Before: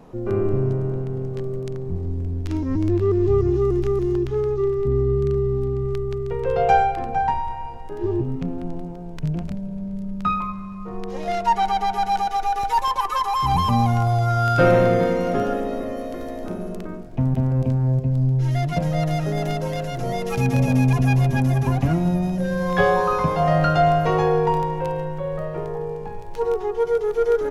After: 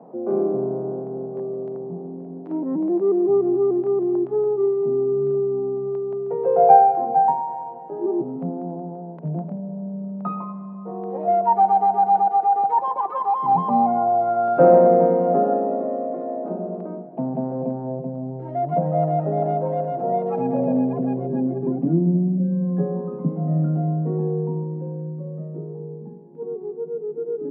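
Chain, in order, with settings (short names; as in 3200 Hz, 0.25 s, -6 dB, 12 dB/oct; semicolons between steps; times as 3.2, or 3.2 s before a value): steep high-pass 150 Hz 72 dB/oct; low-pass sweep 720 Hz -> 260 Hz, 20.32–22.49; gain -1 dB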